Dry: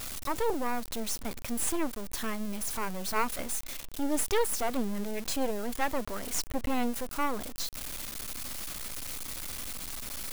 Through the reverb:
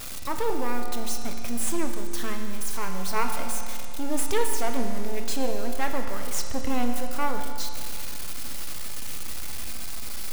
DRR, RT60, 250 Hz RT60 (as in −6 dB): 3.5 dB, 2.3 s, 2.3 s